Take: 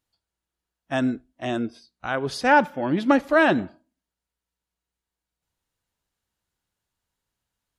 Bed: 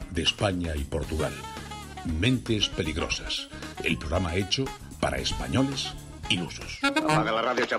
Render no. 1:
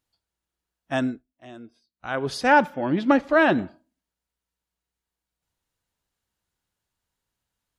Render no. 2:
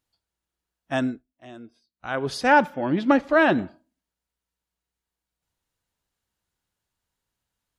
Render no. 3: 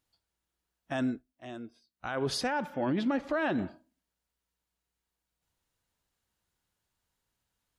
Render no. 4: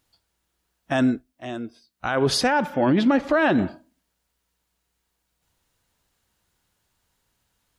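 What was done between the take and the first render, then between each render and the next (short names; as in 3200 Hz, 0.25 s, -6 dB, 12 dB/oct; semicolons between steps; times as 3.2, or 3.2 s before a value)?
0.98–2.19 dip -16 dB, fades 0.26 s; 2.74–3.59 air absorption 69 m
nothing audible
compressor, threshold -22 dBFS, peak gain reduction 10 dB; limiter -22.5 dBFS, peak gain reduction 9 dB
gain +10.5 dB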